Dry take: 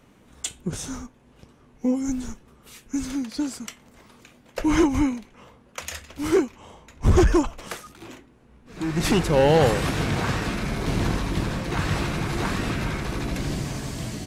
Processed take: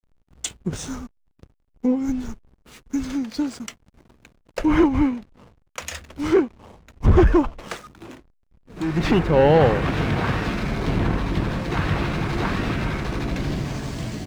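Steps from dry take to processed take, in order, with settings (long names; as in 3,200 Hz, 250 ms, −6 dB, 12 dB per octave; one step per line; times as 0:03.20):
treble cut that deepens with the level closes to 2,600 Hz, closed at −18.5 dBFS
slack as between gear wheels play −40.5 dBFS
level +2.5 dB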